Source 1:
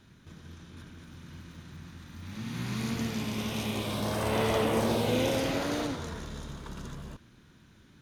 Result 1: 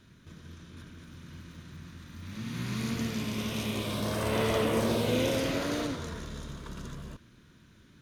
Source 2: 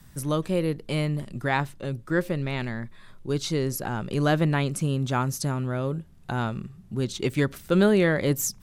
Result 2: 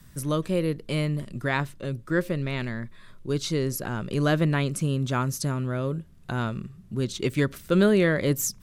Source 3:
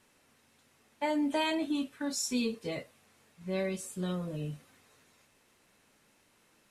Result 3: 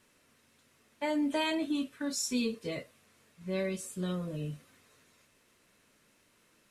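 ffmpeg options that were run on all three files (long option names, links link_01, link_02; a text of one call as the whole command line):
ffmpeg -i in.wav -af "equalizer=frequency=810:width=6.8:gain=-9.5" out.wav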